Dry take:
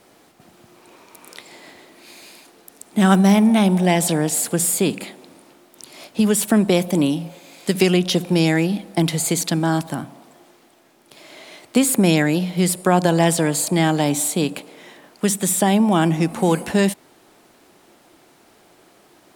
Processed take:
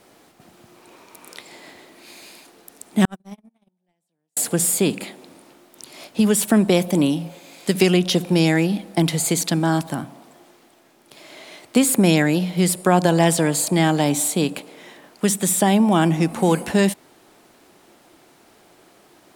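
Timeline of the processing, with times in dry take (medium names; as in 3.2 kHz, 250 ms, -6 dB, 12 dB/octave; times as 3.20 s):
3.05–4.37 s: gate -9 dBFS, range -58 dB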